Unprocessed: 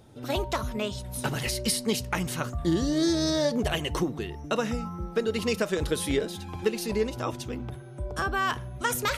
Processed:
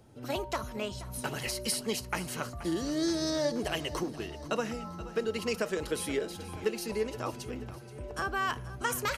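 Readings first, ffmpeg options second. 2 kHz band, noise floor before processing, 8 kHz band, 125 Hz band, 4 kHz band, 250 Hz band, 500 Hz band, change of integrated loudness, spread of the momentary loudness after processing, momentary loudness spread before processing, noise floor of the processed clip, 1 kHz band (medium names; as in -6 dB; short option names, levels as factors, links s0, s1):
-4.0 dB, -41 dBFS, -4.0 dB, -8.0 dB, -5.0 dB, -6.0 dB, -4.5 dB, -5.0 dB, 8 LU, 8 LU, -45 dBFS, -4.0 dB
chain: -filter_complex "[0:a]bandreject=f=3600:w=9.2,acrossover=split=270[s0][s1];[s0]alimiter=level_in=2.51:limit=0.0631:level=0:latency=1:release=359,volume=0.398[s2];[s2][s1]amix=inputs=2:normalize=0,aecho=1:1:478|956|1434|1912|2390|2868:0.158|0.0951|0.0571|0.0342|0.0205|0.0123,volume=0.631"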